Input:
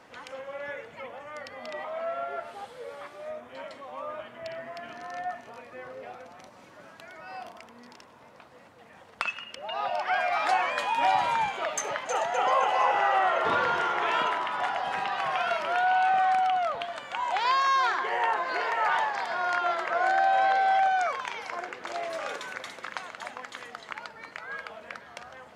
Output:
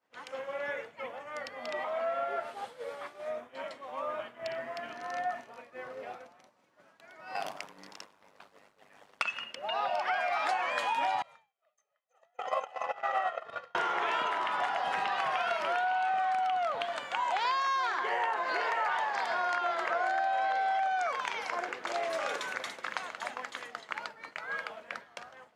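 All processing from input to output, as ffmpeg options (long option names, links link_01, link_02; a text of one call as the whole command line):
ffmpeg -i in.wav -filter_complex "[0:a]asettb=1/sr,asplit=3[link_01][link_02][link_03];[link_01]atrim=end=7.354[link_04];[link_02]atrim=start=7.35:end=9.23,asetpts=PTS-STARTPTS,afade=type=in:duration=0.004:curve=qsin,afade=type=out:start_time=1.876:duration=0.004:curve=qsin,highshelf=frequency=2300:gain=5,acontrast=46,aeval=exprs='val(0)*sin(2*PI*50*n/s)':channel_layout=same[link_05];[link_03]atrim=start=9.226[link_06];[link_04][link_05]acrossfade=duration=0.004:curve1=hsin:curve2=qsin[link_07];[link_07][link_06]acrossfade=duration=0.004:curve1=qsin:curve2=hsin,asettb=1/sr,asplit=3[link_08][link_09][link_10];[link_08]atrim=end=11.224[link_11];[link_09]atrim=start=11.22:end=13.75,asetpts=PTS-STARTPTS,afade=type=in:duration=0.004:curve=qsin,afade=type=out:start_time=2.526:duration=0.004:curve=qsin,aecho=1:1:1.6:0.68,atrim=end_sample=111573,agate=range=-27dB:threshold=-21dB:ratio=16:release=100:detection=peak[link_12];[link_10]atrim=start=13.746[link_13];[link_11][link_12]acrossfade=duration=0.004:curve1=hsin:curve2=qsin[link_14];[link_14][link_13]acrossfade=duration=0.004:curve1=qsin:curve2=hsin,agate=range=-33dB:threshold=-39dB:ratio=3:detection=peak,highpass=frequency=190:poles=1,acompressor=threshold=-29dB:ratio=6,volume=1.5dB" out.wav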